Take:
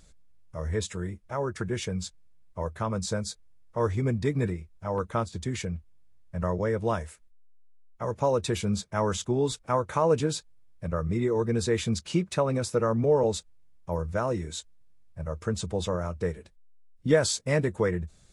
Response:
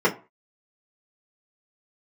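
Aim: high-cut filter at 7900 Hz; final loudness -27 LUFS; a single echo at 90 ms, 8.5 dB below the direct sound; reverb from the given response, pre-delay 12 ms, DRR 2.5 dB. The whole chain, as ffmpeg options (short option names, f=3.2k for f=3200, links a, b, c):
-filter_complex "[0:a]lowpass=7.9k,aecho=1:1:90:0.376,asplit=2[a][b];[1:a]atrim=start_sample=2205,adelay=12[c];[b][c]afir=irnorm=-1:irlink=0,volume=-20.5dB[d];[a][d]amix=inputs=2:normalize=0,volume=-2.5dB"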